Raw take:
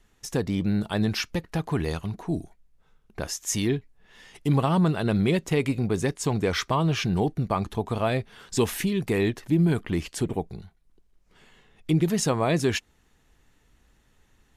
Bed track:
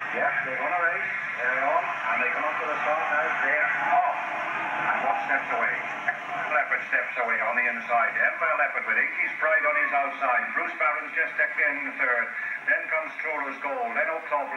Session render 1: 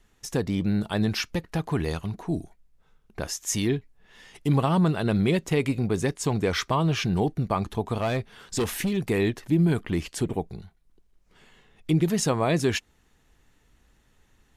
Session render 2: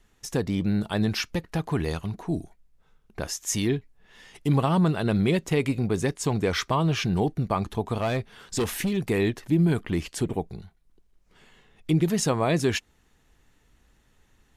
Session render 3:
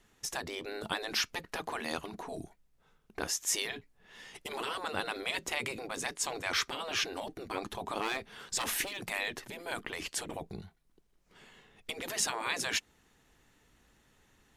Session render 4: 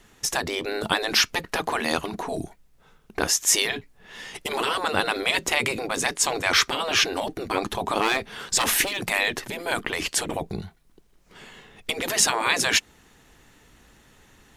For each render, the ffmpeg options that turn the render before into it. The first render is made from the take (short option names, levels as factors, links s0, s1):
-filter_complex "[0:a]asplit=3[s0][s1][s2];[s0]afade=t=out:st=7.99:d=0.02[s3];[s1]volume=11.2,asoftclip=hard,volume=0.0891,afade=t=in:st=7.99:d=0.02,afade=t=out:st=8.96:d=0.02[s4];[s2]afade=t=in:st=8.96:d=0.02[s5];[s3][s4][s5]amix=inputs=3:normalize=0"
-af anull
-af "afftfilt=real='re*lt(hypot(re,im),0.141)':imag='im*lt(hypot(re,im),0.141)':win_size=1024:overlap=0.75,lowshelf=f=82:g=-11"
-af "volume=3.76"